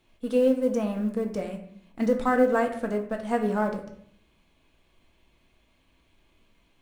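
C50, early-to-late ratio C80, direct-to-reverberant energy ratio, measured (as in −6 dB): 9.5 dB, 12.0 dB, 3.0 dB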